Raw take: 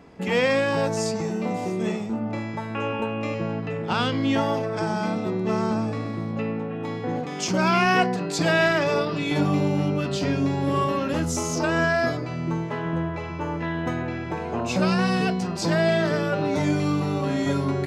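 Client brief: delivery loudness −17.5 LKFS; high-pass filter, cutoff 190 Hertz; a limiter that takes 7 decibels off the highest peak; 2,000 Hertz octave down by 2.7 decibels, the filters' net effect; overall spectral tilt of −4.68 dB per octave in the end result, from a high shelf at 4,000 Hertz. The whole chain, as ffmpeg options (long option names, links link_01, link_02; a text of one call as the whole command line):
ffmpeg -i in.wav -af "highpass=190,equalizer=frequency=2000:width_type=o:gain=-4.5,highshelf=frequency=4000:gain=4,volume=9.5dB,alimiter=limit=-6.5dB:level=0:latency=1" out.wav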